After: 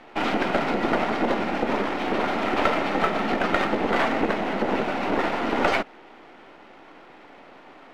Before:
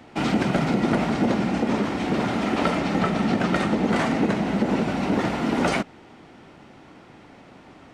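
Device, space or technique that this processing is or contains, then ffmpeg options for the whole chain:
crystal radio: -af "highpass=380,lowpass=3.3k,aeval=exprs='if(lt(val(0),0),0.447*val(0),val(0))':c=same,volume=5.5dB"

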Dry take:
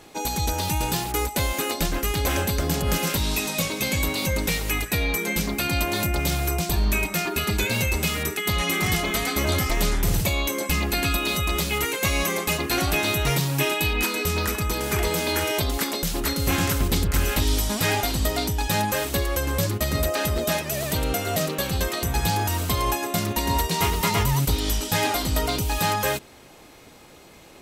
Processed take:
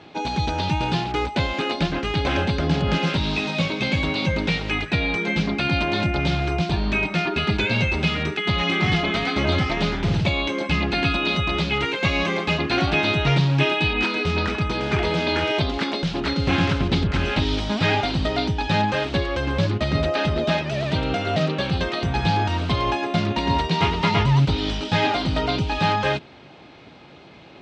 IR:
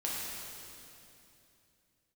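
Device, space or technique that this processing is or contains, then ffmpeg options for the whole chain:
guitar cabinet: -af "highpass=81,equalizer=f=150:t=q:w=4:g=4,equalizer=f=480:t=q:w=4:g=-4,equalizer=f=1.1k:t=q:w=4:g=-3,equalizer=f=1.9k:t=q:w=4:g=-3,lowpass=f=4k:w=0.5412,lowpass=f=4k:w=1.3066,volume=4dB"

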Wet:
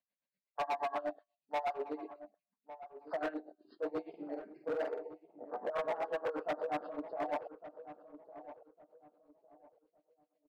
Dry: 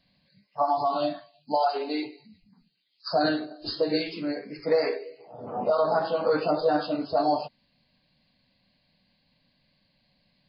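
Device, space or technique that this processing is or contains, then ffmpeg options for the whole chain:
helicopter radio: -filter_complex "[0:a]afwtdn=0.0251,highpass=310,lowpass=2.5k,aeval=exprs='val(0)*pow(10,-21*(0.5-0.5*cos(2*PI*8.3*n/s))/20)':c=same,asoftclip=type=hard:threshold=-29dB,bass=f=250:g=-8,treble=f=4k:g=-5,asettb=1/sr,asplit=3[a][b][c];[a]atrim=end=4.094[d];[b]atrim=start=4.09:end=5.36,asetpts=PTS-STARTPTS,afade=t=in:d=0.004:c=qsin,afade=t=out:st=1.266:d=0.004:c=qsin,asplit=2[e][f];[f]adelay=47,volume=-4.5dB[g];[e][g]amix=inputs=2:normalize=0,atrim=end_sample=56007[h];[c]atrim=start=5.356[i];[d][h]acrossfade=d=0.004:c1=hsin:c2=qsin[j];[j][i]acrossfade=d=0.004:c1=qsin:c2=hsin,asplit=2[k][l];[l]adelay=1156,lowpass=f=940:p=1,volume=-12dB,asplit=2[m][n];[n]adelay=1156,lowpass=f=940:p=1,volume=0.32,asplit=2[o][p];[p]adelay=1156,lowpass=f=940:p=1,volume=0.32[q];[k][m][o][q]amix=inputs=4:normalize=0,volume=-1.5dB"

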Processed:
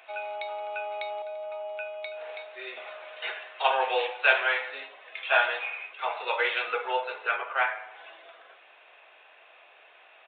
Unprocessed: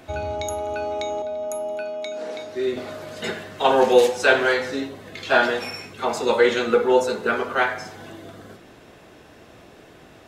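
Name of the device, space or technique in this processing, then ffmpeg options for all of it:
musical greeting card: -filter_complex "[0:a]aresample=8000,aresample=44100,highpass=f=650:w=0.5412,highpass=f=650:w=1.3066,equalizer=f=2.5k:t=o:w=0.32:g=9,asettb=1/sr,asplit=3[a][b][c];[a]atrim=end=7.364[d];[b]atrim=start=7.36:end=7.95,asetpts=PTS-STARTPTS,afade=t=in:d=0.004:c=qsin,afade=t=out:st=0.586:d=0.004:c=qsin,lowpass=2.6k[e];[c]atrim=start=7.946[f];[d][e]acrossfade=d=0.004:c1=hsin:c2=qsin[g];[g][f]acrossfade=d=0.004:c1=qsin:c2=hsin,volume=-4.5dB"

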